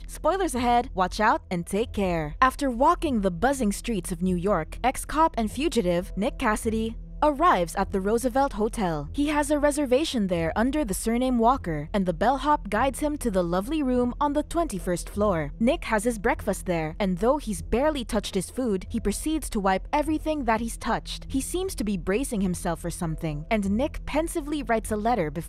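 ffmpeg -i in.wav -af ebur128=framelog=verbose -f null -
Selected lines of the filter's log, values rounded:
Integrated loudness:
  I:         -25.7 LUFS
  Threshold: -35.6 LUFS
Loudness range:
  LRA:         3.1 LU
  Threshold: -45.6 LUFS
  LRA low:   -27.4 LUFS
  LRA high:  -24.3 LUFS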